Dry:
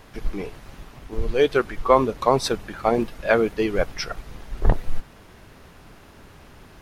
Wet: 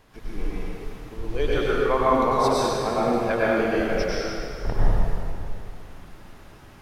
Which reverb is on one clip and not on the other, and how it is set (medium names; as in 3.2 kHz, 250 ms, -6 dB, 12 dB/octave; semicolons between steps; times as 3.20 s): plate-style reverb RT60 2.6 s, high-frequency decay 0.75×, pre-delay 85 ms, DRR -8 dB; trim -9 dB